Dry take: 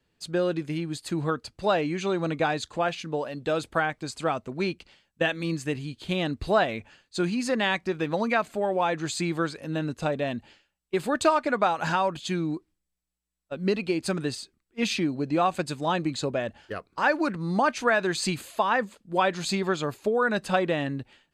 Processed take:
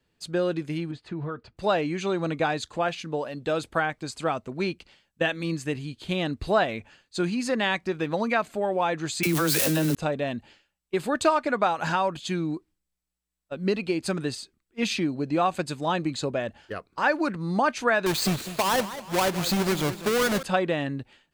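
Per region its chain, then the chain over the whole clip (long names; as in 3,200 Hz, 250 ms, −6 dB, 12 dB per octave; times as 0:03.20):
0:00.91–0:01.57: low-pass filter 2,400 Hz + downward compressor 4 to 1, threshold −28 dBFS + notch comb filter 270 Hz
0:09.23–0:09.95: spike at every zero crossing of −25 dBFS + all-pass dispersion lows, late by 41 ms, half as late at 400 Hz + envelope flattener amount 100%
0:18.06–0:20.43: each half-wave held at its own peak + downward compressor 2 to 1, threshold −23 dBFS + feedback echo with a swinging delay time 197 ms, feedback 43%, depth 170 cents, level −13.5 dB
whole clip: no processing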